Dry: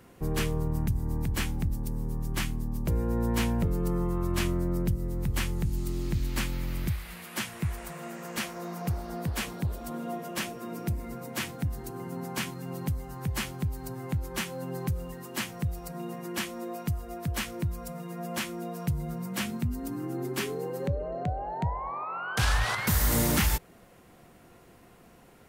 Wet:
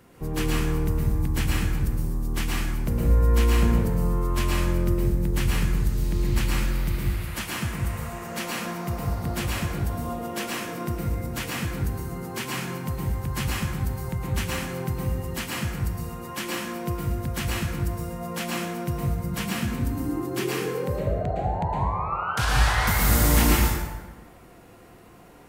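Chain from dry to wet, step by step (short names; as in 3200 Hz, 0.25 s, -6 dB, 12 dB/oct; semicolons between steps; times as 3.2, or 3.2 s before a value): plate-style reverb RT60 1.3 s, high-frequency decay 0.6×, pre-delay 0.1 s, DRR -4 dB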